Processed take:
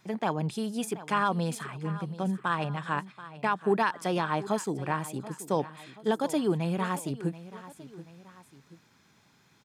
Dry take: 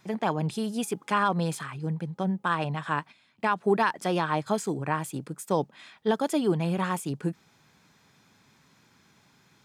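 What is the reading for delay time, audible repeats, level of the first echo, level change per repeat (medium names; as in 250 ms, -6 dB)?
731 ms, 2, -16.0 dB, -6.5 dB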